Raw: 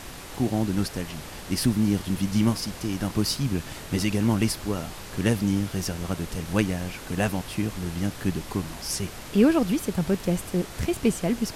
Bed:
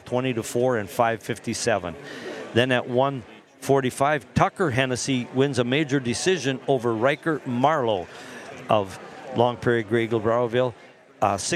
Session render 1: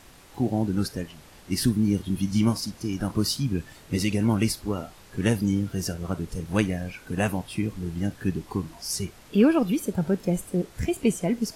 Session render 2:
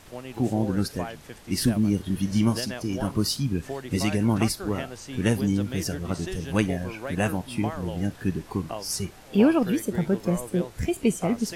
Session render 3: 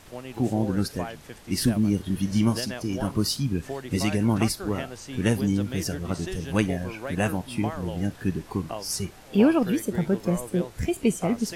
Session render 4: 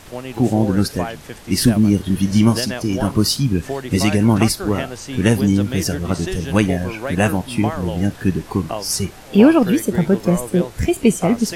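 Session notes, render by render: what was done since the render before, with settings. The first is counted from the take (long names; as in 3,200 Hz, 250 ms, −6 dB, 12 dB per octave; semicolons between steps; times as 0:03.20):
noise reduction from a noise print 11 dB
mix in bed −14.5 dB
no processing that can be heard
level +8.5 dB; brickwall limiter −1 dBFS, peak gain reduction 2.5 dB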